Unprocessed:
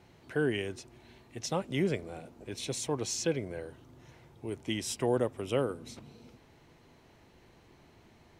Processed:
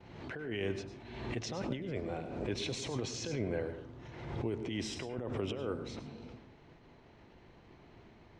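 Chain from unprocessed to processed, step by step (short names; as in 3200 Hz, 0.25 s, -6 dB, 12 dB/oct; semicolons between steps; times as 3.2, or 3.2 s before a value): expander -55 dBFS; negative-ratio compressor -37 dBFS, ratio -1; air absorption 150 m; on a send at -10 dB: reverb RT60 0.40 s, pre-delay 97 ms; on the sum: backwards sustainer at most 48 dB/s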